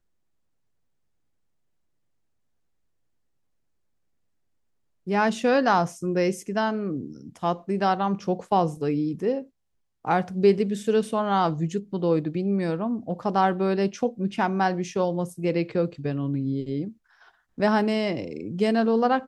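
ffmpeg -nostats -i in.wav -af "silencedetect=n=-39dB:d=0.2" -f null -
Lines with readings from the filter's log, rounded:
silence_start: 0.00
silence_end: 5.07 | silence_duration: 5.07
silence_start: 9.43
silence_end: 10.05 | silence_duration: 0.61
silence_start: 16.91
silence_end: 17.58 | silence_duration: 0.67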